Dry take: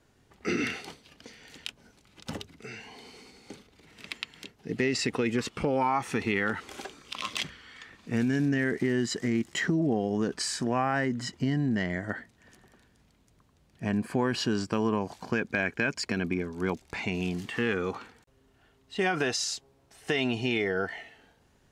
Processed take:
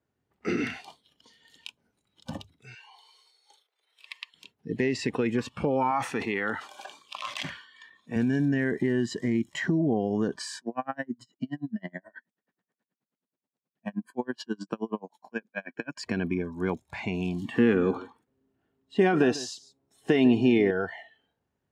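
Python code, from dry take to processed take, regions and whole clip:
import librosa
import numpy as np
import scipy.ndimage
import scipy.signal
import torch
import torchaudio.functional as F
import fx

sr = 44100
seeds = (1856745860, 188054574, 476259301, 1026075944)

y = fx.chain(x, sr, fx.bessel_highpass(hz=760.0, order=8),
    fx.notch(hz=7200.0, q=12.0), at=(2.74, 4.34))
y = fx.chain(y, sr, fx.highpass(hz=290.0, slope=6),
    fx.sustainer(db_per_s=81.0), at=(5.91, 8.16))
y = fx.chain(y, sr, fx.highpass(hz=170.0, slope=24),
    fx.tremolo_db(hz=9.4, depth_db=36), at=(10.58, 15.97))
y = fx.chain(y, sr, fx.peak_eq(hz=270.0, db=9.5, octaves=1.4),
    fx.echo_single(ms=148, db=-16.5), at=(17.42, 20.71))
y = scipy.signal.sosfilt(scipy.signal.butter(2, 70.0, 'highpass', fs=sr, output='sos'), y)
y = fx.noise_reduce_blind(y, sr, reduce_db=16)
y = fx.high_shelf(y, sr, hz=2700.0, db=-9.5)
y = y * librosa.db_to_amplitude(1.5)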